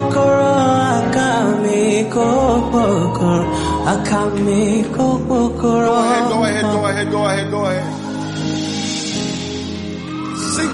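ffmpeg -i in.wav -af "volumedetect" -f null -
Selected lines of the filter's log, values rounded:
mean_volume: -16.1 dB
max_volume: -4.9 dB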